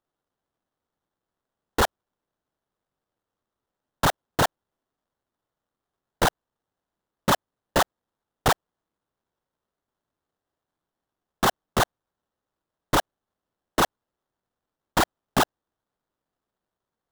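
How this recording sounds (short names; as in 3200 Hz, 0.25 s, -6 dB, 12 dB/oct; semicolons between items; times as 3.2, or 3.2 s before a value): aliases and images of a low sample rate 2400 Hz, jitter 20%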